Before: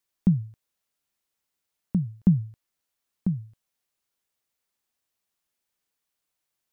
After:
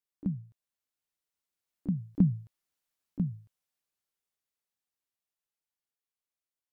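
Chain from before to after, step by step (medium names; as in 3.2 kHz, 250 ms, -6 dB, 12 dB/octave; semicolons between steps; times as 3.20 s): Doppler pass-by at 2.73 s, 13 m/s, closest 15 m; harmony voices +7 st -15 dB; trim -4 dB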